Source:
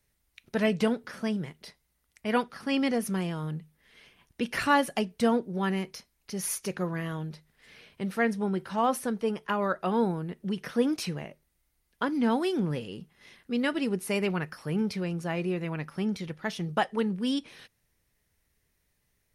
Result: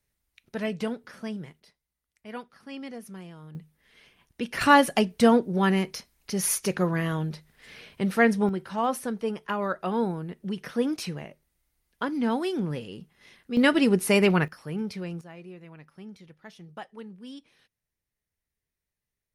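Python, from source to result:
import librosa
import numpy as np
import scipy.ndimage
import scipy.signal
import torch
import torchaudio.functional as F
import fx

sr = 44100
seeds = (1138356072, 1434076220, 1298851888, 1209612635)

y = fx.gain(x, sr, db=fx.steps((0.0, -4.5), (1.6, -12.0), (3.55, -1.0), (4.61, 6.0), (8.49, -0.5), (13.57, 8.0), (14.48, -3.0), (15.21, -14.0)))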